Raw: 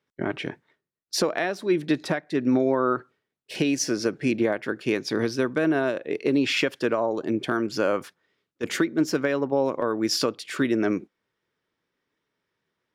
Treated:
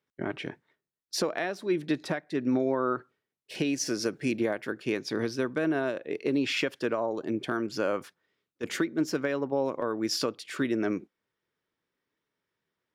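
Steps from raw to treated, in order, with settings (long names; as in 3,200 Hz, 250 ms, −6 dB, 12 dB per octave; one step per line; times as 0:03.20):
0:03.85–0:04.72: high-shelf EQ 5,000 Hz → 9,500 Hz +9.5 dB
level −5 dB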